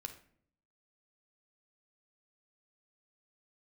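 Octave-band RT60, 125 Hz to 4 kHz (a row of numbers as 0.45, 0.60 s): 0.85, 0.85, 0.70, 0.50, 0.50, 0.35 s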